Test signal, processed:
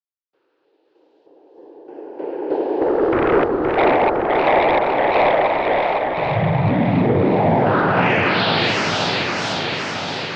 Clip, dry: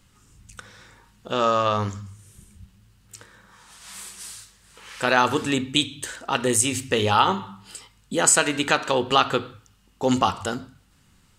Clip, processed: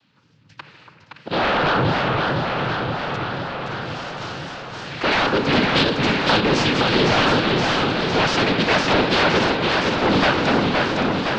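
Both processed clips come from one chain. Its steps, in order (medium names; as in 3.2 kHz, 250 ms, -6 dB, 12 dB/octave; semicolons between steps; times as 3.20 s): companding laws mixed up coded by A; noise-vocoded speech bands 8; peaking EQ 1.1 kHz -4 dB 0.37 oct; in parallel at -9.5 dB: sine folder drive 20 dB, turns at -1.5 dBFS; on the sum: gain riding within 3 dB 0.5 s; low-pass 4.3 kHz 24 dB/octave; on a send: echo whose repeats swap between lows and highs 284 ms, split 1.4 kHz, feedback 83%, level -7.5 dB; on the sum: modulated delay 514 ms, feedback 69%, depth 173 cents, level -3.5 dB; trim -5 dB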